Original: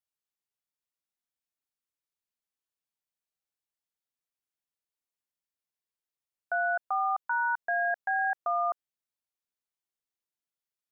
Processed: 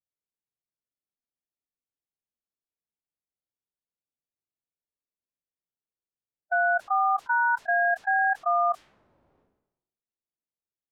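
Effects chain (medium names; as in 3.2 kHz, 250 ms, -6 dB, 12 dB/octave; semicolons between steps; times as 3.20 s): harmonic-percussive split percussive -12 dB; level-controlled noise filter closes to 560 Hz, open at -25 dBFS; decay stretcher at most 63 dB/s; trim +5 dB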